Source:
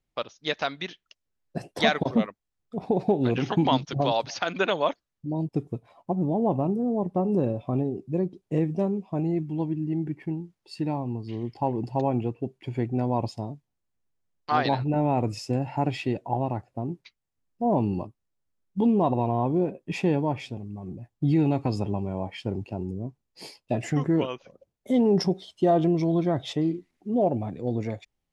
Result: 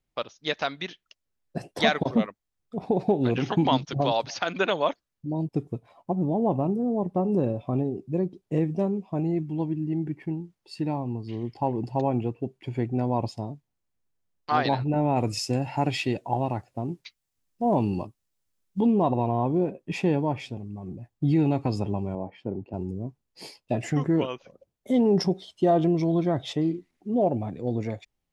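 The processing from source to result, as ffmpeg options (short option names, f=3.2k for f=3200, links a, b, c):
-filter_complex "[0:a]asettb=1/sr,asplit=3[a][b][c];[a]atrim=end=15.164[d];[b]atrim=start=15.16:end=18.8,asetpts=PTS-STARTPTS,afade=t=in:d=0.004:c=qsin,afade=t=out:st=3.636:d=0.004:c=qsin,highshelf=f=2.4k:g=9.5[e];[c]atrim=start=18.796[f];[d][e]acrossfade=d=0.004:c1=hsin:c2=qsin[g];[g][f]acrossfade=d=0.004:c1=qsin:c2=hsin,asettb=1/sr,asplit=3[h][i][j];[h]atrim=end=22.154[k];[i]atrim=start=22.15:end=22.74,asetpts=PTS-STARTPTS,afade=t=in:d=0.004:c=qsin,afade=t=out:st=0.586:d=0.004:c=qsin,bandpass=f=350:t=q:w=0.57[l];[j]atrim=start=22.736[m];[k][l]acrossfade=d=0.004:c1=hsin:c2=qsin[n];[n][m]acrossfade=d=0.004:c1=qsin:c2=hsin"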